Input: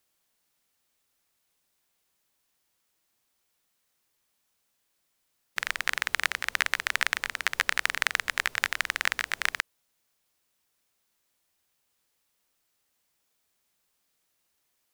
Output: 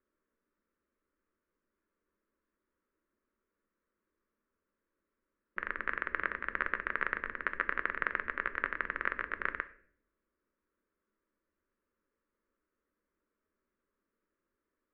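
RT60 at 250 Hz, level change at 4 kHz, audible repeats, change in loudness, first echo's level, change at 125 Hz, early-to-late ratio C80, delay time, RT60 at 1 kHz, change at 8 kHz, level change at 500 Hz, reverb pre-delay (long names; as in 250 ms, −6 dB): 0.85 s, −25.0 dB, no echo audible, −7.0 dB, no echo audible, can't be measured, 20.0 dB, no echo audible, 0.45 s, below −40 dB, 0.0 dB, 4 ms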